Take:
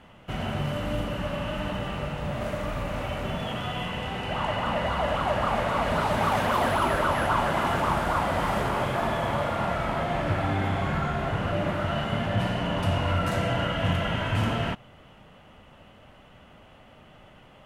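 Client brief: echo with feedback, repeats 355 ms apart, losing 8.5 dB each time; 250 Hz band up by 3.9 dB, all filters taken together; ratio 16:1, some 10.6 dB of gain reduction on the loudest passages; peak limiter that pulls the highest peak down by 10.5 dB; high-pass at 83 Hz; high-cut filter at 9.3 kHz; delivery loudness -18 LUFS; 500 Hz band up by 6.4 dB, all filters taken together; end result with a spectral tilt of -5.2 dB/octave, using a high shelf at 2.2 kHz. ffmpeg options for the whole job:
-af "highpass=83,lowpass=9300,equalizer=f=250:t=o:g=3.5,equalizer=f=500:t=o:g=8,highshelf=f=2200:g=-3.5,acompressor=threshold=0.0398:ratio=16,alimiter=level_in=2:limit=0.0631:level=0:latency=1,volume=0.501,aecho=1:1:355|710|1065|1420:0.376|0.143|0.0543|0.0206,volume=9.44"

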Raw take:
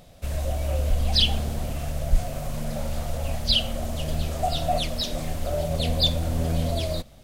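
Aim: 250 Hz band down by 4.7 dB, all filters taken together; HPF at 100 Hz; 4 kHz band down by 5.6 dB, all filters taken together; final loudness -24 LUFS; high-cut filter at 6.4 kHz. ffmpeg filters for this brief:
-af "highpass=100,lowpass=6400,equalizer=f=250:t=o:g=-6.5,equalizer=f=4000:t=o:g=-6.5,volume=2.24"

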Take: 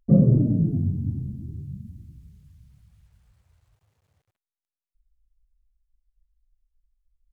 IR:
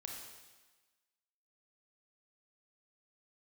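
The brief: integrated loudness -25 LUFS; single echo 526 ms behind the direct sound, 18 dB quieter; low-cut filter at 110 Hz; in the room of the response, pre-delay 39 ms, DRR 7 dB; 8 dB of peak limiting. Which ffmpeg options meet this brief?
-filter_complex "[0:a]highpass=110,alimiter=limit=0.2:level=0:latency=1,aecho=1:1:526:0.126,asplit=2[s0][s1];[1:a]atrim=start_sample=2205,adelay=39[s2];[s1][s2]afir=irnorm=-1:irlink=0,volume=0.596[s3];[s0][s3]amix=inputs=2:normalize=0,volume=1.06"

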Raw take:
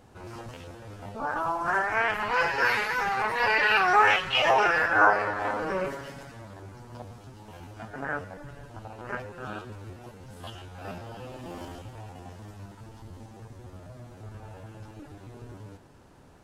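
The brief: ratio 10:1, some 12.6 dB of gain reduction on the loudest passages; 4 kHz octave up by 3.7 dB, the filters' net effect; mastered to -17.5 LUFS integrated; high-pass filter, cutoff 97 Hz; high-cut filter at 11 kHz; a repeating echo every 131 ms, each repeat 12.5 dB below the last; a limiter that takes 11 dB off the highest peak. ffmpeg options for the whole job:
-af "highpass=97,lowpass=11000,equalizer=f=4000:t=o:g=6,acompressor=threshold=0.0447:ratio=10,alimiter=level_in=1.68:limit=0.0631:level=0:latency=1,volume=0.596,aecho=1:1:131|262|393:0.237|0.0569|0.0137,volume=12.6"

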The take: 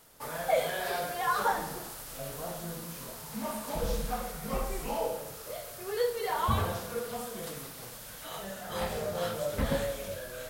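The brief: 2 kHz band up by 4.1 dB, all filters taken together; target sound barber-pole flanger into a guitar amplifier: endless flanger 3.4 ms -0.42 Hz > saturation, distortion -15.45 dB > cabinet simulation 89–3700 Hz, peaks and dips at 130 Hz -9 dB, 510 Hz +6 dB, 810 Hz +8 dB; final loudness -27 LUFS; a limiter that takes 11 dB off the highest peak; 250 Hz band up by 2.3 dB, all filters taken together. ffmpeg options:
-filter_complex "[0:a]equalizer=f=250:t=o:g=3.5,equalizer=f=2000:t=o:g=5,alimiter=level_in=1.06:limit=0.0631:level=0:latency=1,volume=0.944,asplit=2[s0][s1];[s1]adelay=3.4,afreqshift=-0.42[s2];[s0][s2]amix=inputs=2:normalize=1,asoftclip=threshold=0.0237,highpass=89,equalizer=f=130:t=q:w=4:g=-9,equalizer=f=510:t=q:w=4:g=6,equalizer=f=810:t=q:w=4:g=8,lowpass=f=3700:w=0.5412,lowpass=f=3700:w=1.3066,volume=3.55"

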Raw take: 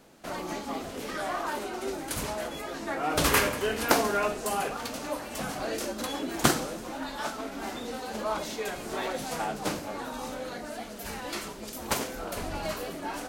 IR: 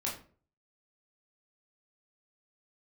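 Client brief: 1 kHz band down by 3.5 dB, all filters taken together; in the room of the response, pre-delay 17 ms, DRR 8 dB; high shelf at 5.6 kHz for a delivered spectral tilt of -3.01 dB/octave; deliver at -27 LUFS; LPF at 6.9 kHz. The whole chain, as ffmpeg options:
-filter_complex "[0:a]lowpass=6900,equalizer=f=1000:t=o:g=-5,highshelf=f=5600:g=7,asplit=2[s0][s1];[1:a]atrim=start_sample=2205,adelay=17[s2];[s1][s2]afir=irnorm=-1:irlink=0,volume=0.266[s3];[s0][s3]amix=inputs=2:normalize=0,volume=1.68"

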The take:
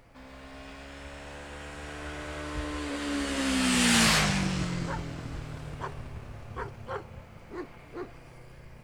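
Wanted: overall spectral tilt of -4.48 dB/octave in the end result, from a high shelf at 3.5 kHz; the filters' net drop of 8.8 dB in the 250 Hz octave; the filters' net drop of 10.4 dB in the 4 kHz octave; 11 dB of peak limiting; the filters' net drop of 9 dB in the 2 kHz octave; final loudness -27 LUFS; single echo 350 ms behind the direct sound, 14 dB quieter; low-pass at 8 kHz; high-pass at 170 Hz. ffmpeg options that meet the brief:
-af "highpass=170,lowpass=8000,equalizer=f=250:t=o:g=-9,equalizer=f=2000:t=o:g=-8,highshelf=f=3500:g=-6,equalizer=f=4000:t=o:g=-6.5,alimiter=level_in=2.11:limit=0.0631:level=0:latency=1,volume=0.473,aecho=1:1:350:0.2,volume=6.31"

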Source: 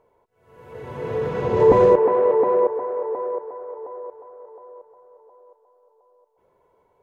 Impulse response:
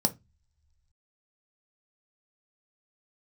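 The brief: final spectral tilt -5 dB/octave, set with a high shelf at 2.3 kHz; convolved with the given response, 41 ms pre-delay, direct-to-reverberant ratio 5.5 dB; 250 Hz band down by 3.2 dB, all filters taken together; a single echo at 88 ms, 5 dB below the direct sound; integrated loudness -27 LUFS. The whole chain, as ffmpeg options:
-filter_complex "[0:a]equalizer=f=250:t=o:g=-5.5,highshelf=f=2300:g=-6.5,aecho=1:1:88:0.562,asplit=2[s0][s1];[1:a]atrim=start_sample=2205,adelay=41[s2];[s1][s2]afir=irnorm=-1:irlink=0,volume=0.224[s3];[s0][s3]amix=inputs=2:normalize=0,volume=0.335"

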